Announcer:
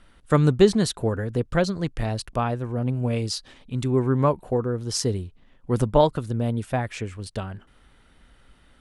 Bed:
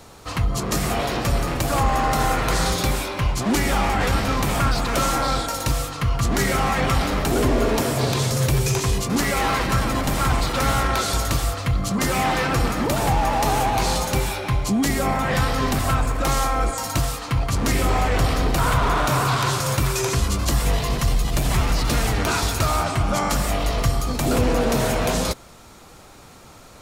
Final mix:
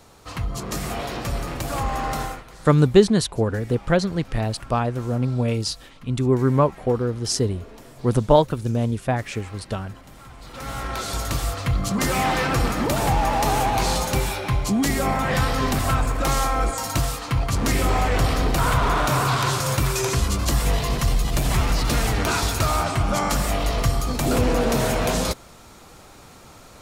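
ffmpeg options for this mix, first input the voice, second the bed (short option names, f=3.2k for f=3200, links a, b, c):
-filter_complex "[0:a]adelay=2350,volume=2.5dB[a];[1:a]volume=17.5dB,afade=t=out:st=2.16:d=0.28:silence=0.125893,afade=t=in:st=10.38:d=1.35:silence=0.0707946[b];[a][b]amix=inputs=2:normalize=0"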